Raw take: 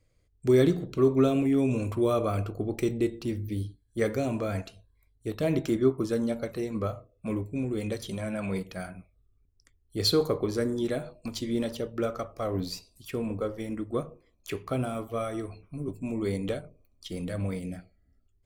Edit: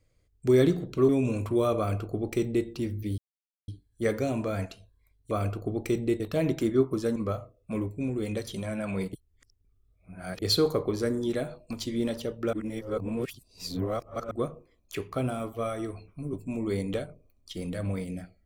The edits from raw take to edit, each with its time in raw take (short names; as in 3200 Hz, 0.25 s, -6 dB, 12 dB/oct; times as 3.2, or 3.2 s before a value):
1.09–1.55 cut
2.24–3.13 copy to 5.27
3.64 insert silence 0.50 s
6.23–6.71 cut
8.68–9.97 reverse
12.08–13.86 reverse